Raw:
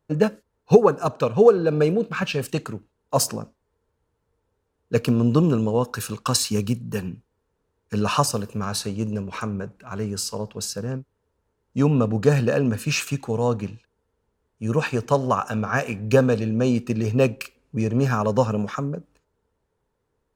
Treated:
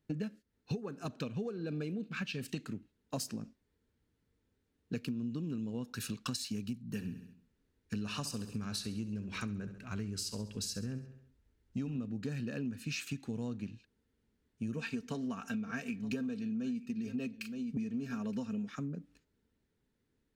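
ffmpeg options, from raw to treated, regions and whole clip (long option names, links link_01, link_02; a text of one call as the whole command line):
ffmpeg -i in.wav -filter_complex "[0:a]asettb=1/sr,asplit=3[link_01][link_02][link_03];[link_01]atrim=end=6.844[link_04];[link_02]atrim=start=6.84:end=11.98,asetpts=PTS-STARTPTS,afade=type=in:duration=0.004:curve=qsin,afade=type=out:start_time=5.136:duration=0.004:curve=qsin,asubboost=boost=4.5:cutoff=81,aecho=1:1:67|134|201|268|335:0.2|0.102|0.0519|0.0265|0.0135,atrim=end_sample=226674[link_05];[link_03]atrim=start=11.976[link_06];[link_04][link_05]acrossfade=duration=0.004:curve1=hsin:curve2=qsin[link_07];[link_07][link_06]acrossfade=duration=0.004:curve1=qsin:curve2=hsin,asettb=1/sr,asplit=3[link_08][link_09][link_10];[link_08]atrim=end=14.744[link_11];[link_09]atrim=start=14.74:end=18.68,asetpts=PTS-STARTPTS,afade=type=in:duration=0.004:curve=qsin,afade=type=out:start_time=3.936:duration=0.004:curve=qsin,aecho=1:1:4.4:0.6,atrim=end_sample=173754,aecho=1:1:920:0.112,atrim=end_sample=173754[link_12];[link_10]atrim=start=18.676[link_13];[link_11][link_12]acrossfade=duration=0.004:curve1=hsin:curve2=qsin[link_14];[link_14][link_13]acrossfade=duration=0.004:curve1=qsin:curve2=hsin,equalizer=frequency=250:width_type=o:width=1:gain=10,equalizer=frequency=500:width_type=o:width=1:gain=-6,equalizer=frequency=1000:width_type=o:width=1:gain=-9,equalizer=frequency=2000:width_type=o:width=1:gain=5,equalizer=frequency=4000:width_type=o:width=1:gain=5,acompressor=threshold=-29dB:ratio=10,volume=-6dB" out.wav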